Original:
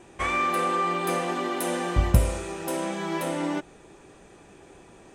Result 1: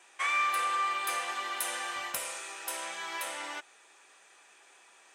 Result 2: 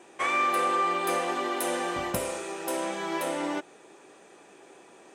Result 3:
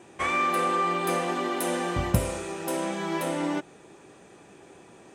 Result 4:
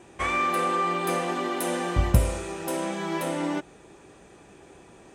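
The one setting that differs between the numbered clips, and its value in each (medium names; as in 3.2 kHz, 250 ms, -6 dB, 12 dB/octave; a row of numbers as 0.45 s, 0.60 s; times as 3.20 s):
high-pass, cutoff frequency: 1.3 kHz, 330 Hz, 110 Hz, 41 Hz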